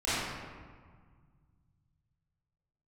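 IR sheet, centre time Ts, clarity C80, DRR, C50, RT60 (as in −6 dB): 130 ms, −1.5 dB, −14.5 dB, −5.5 dB, 1.7 s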